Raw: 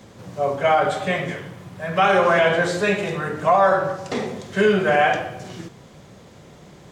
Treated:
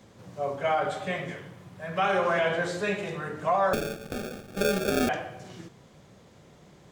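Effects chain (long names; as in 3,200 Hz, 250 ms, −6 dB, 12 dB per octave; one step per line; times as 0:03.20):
0:03.73–0:05.09: sample-rate reduction 1,000 Hz, jitter 0%
level −8.5 dB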